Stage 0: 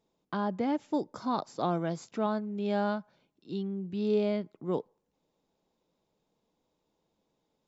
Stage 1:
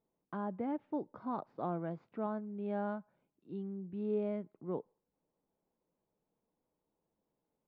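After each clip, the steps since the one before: Bessel low-pass 1600 Hz, order 4; gain -7 dB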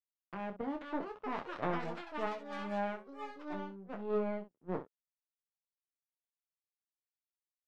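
power-law curve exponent 2; echoes that change speed 0.579 s, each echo +6 st, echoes 3, each echo -6 dB; early reflections 11 ms -6 dB, 26 ms -7.5 dB, 64 ms -11.5 dB; gain +4.5 dB

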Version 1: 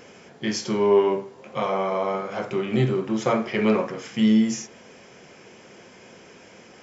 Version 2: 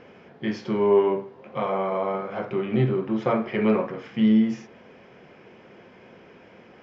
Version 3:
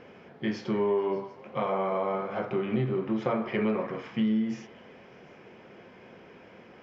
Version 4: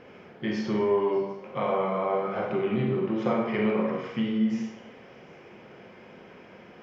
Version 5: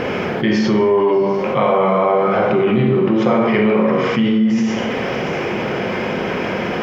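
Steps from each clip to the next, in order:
air absorption 320 m
compressor, threshold -22 dBFS, peak gain reduction 8 dB; delay with a stepping band-pass 0.148 s, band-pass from 920 Hz, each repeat 0.7 oct, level -10.5 dB; gain -1.5 dB
reverb RT60 0.65 s, pre-delay 33 ms, DRR 1.5 dB
fast leveller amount 70%; gain +8 dB

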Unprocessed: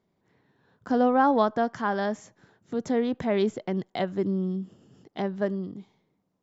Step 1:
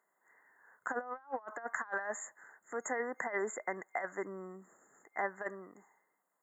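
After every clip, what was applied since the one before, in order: FFT band-reject 2100–6600 Hz; HPF 1200 Hz 12 dB/oct; negative-ratio compressor -40 dBFS, ratio -0.5; gain +3 dB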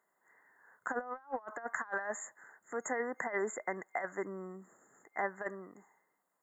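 low shelf 190 Hz +6 dB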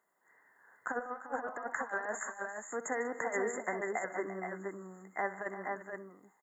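tapped delay 63/150/191/345/465/480 ms -14.5/-17/-19.5/-13.5/-11.5/-5.5 dB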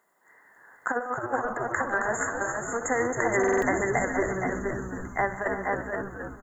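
frequency-shifting echo 0.269 s, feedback 56%, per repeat -130 Hz, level -6 dB; stuck buffer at 3.39, samples 2048, times 4; ending taper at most 200 dB/s; gain +9 dB

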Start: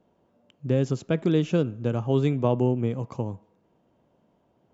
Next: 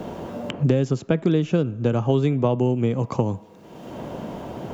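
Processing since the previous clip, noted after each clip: three-band squash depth 100%; gain +3 dB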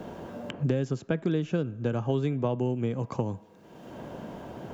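bell 1600 Hz +6 dB 0.21 oct; gain -7.5 dB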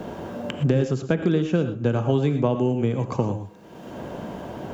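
non-linear reverb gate 0.14 s rising, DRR 8 dB; gain +6 dB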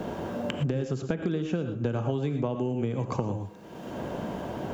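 compressor 6:1, threshold -25 dBFS, peak gain reduction 10 dB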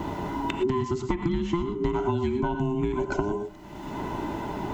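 band inversion scrambler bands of 500 Hz; gain +2.5 dB

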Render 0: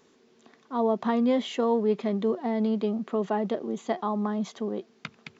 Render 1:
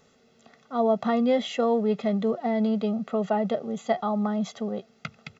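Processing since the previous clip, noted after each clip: low shelf 170 Hz +6 dB; comb 1.5 ms, depth 78%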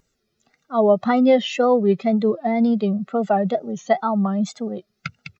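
per-bin expansion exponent 1.5; wow and flutter 130 cents; gain +8.5 dB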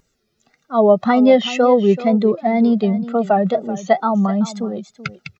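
echo 0.382 s -15 dB; gain +3.5 dB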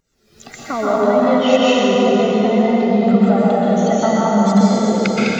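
recorder AGC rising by 78 dB/s; plate-style reverb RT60 4.2 s, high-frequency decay 0.75×, pre-delay 0.11 s, DRR -8 dB; gain -9 dB

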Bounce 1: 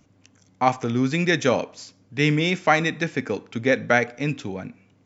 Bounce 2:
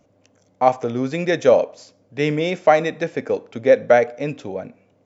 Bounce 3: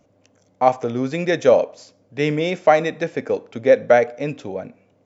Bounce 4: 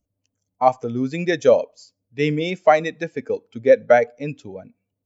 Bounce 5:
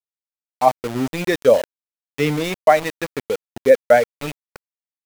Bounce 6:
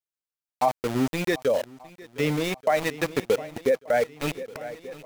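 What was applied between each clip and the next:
bell 570 Hz +15 dB 1 oct; gain -4.5 dB
nothing audible
per-bin expansion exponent 1.5; gain +1.5 dB
sample gate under -25 dBFS; gain +1 dB
limiter -9.5 dBFS, peak gain reduction 8.5 dB; swung echo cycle 1.183 s, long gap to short 1.5:1, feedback 45%, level -19.5 dB; vocal rider within 4 dB 0.5 s; gain -2.5 dB

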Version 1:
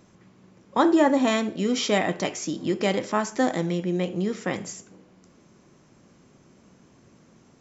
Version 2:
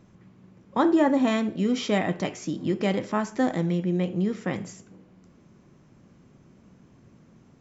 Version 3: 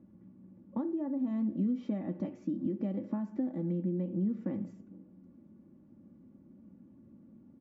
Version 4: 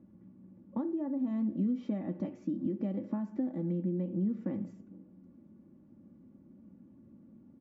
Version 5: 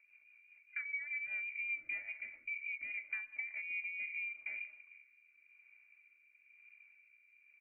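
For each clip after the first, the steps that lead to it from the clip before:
tone controls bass +7 dB, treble -6 dB; gain -3 dB
comb 3.5 ms, depth 68%; compressor 16:1, threshold -26 dBFS, peak gain reduction 14.5 dB; band-pass 190 Hz, Q 1.2
nothing audible
low shelf 370 Hz -7 dB; inverted band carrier 2600 Hz; rotary speaker horn 5 Hz, later 1 Hz, at 3.5; gain -1 dB

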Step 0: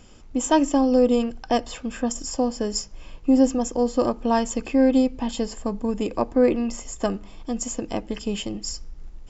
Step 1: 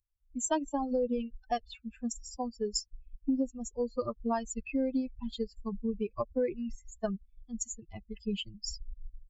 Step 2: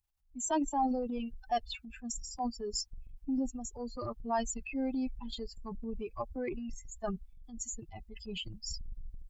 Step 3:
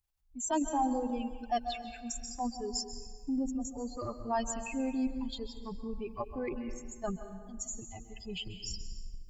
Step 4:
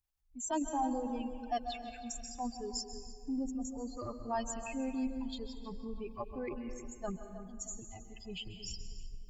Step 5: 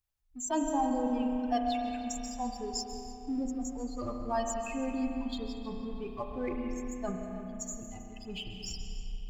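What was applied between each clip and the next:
per-bin expansion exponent 3; compressor 6:1, threshold -27 dBFS, peak gain reduction 12 dB
thirty-one-band EQ 200 Hz -11 dB, 500 Hz -9 dB, 800 Hz +9 dB; transient shaper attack -5 dB, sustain +8 dB
plate-style reverb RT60 1.6 s, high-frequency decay 0.65×, pre-delay 0.12 s, DRR 8.5 dB
darkening echo 0.316 s, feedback 37%, low-pass 2900 Hz, level -12 dB; gain -3.5 dB
in parallel at -7 dB: crossover distortion -51.5 dBFS; on the sum: spring tank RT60 3.3 s, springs 32 ms, chirp 80 ms, DRR 4 dB

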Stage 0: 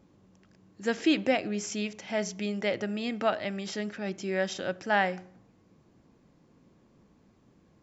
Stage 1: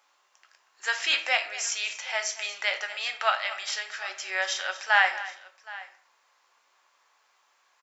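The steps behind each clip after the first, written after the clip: HPF 930 Hz 24 dB/oct; tapped delay 0.236/0.77 s -16/-19.5 dB; shoebox room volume 45 m³, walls mixed, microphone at 0.34 m; gain +7.5 dB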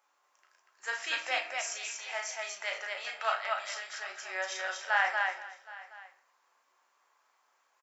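bell 3700 Hz -7 dB 1.7 oct; on a send: loudspeakers at several distances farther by 12 m -5 dB, 82 m -3 dB; on the sum: gain -5.5 dB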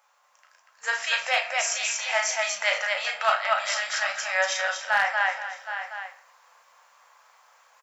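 hard clip -19 dBFS, distortion -26 dB; vocal rider within 5 dB 0.5 s; FFT band-reject 230–460 Hz; gain +9 dB

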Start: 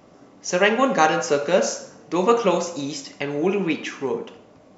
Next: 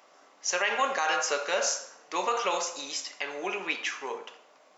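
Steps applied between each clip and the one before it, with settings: HPF 880 Hz 12 dB/oct; limiter -16 dBFS, peak gain reduction 10 dB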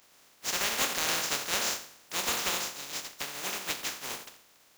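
spectral contrast lowered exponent 0.16; gain -2 dB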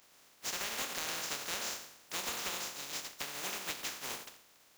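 compressor, threshold -32 dBFS, peak gain reduction 8.5 dB; gain -2.5 dB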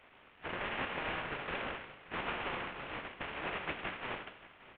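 CVSD 16 kbps; echo 0.576 s -18 dB; gain +4 dB

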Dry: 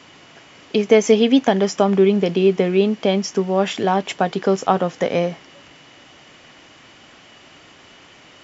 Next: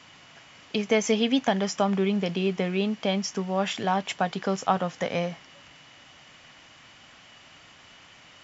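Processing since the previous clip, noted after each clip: bell 370 Hz -9 dB 1.2 oct; gain -4 dB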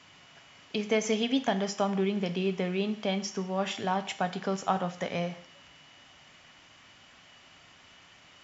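reverb, pre-delay 3 ms, DRR 10 dB; gain -4.5 dB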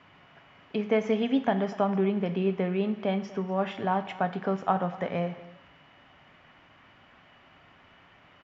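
LPF 1900 Hz 12 dB/oct; echo 0.242 s -19 dB; gain +2.5 dB

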